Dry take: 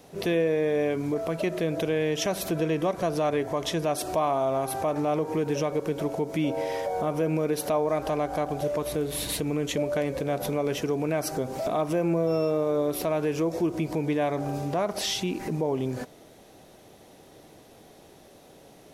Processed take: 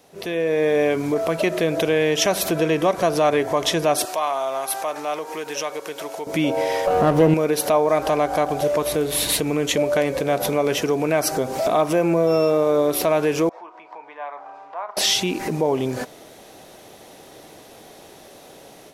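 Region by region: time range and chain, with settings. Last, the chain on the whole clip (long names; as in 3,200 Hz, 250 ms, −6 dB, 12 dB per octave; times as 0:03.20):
0:04.05–0:06.27: high-pass filter 1,400 Hz 6 dB per octave + notch filter 2,300 Hz, Q 29
0:06.87–0:07.34: low-shelf EQ 390 Hz +11.5 dB + windowed peak hold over 9 samples
0:13.49–0:14.97: four-pole ladder band-pass 1,100 Hz, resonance 50% + double-tracking delay 35 ms −12.5 dB
whole clip: low-shelf EQ 330 Hz −8.5 dB; automatic gain control gain up to 10 dB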